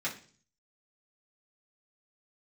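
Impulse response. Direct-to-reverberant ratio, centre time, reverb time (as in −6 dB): −7.0 dB, 17 ms, 0.45 s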